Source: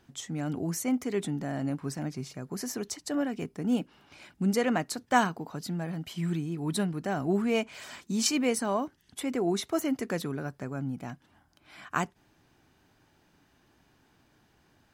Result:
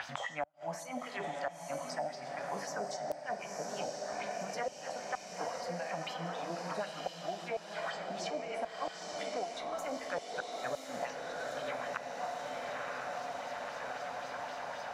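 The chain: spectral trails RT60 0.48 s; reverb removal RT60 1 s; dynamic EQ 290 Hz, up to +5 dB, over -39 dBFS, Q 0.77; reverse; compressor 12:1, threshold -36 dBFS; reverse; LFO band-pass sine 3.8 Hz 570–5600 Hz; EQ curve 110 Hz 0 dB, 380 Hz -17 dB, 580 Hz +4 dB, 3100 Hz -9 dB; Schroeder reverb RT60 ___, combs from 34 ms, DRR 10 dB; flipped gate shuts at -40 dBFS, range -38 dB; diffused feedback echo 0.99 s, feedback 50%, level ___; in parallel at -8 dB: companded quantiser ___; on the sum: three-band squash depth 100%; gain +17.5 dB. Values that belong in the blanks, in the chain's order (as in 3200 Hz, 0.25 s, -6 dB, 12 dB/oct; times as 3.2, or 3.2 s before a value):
1.3 s, -5 dB, 2-bit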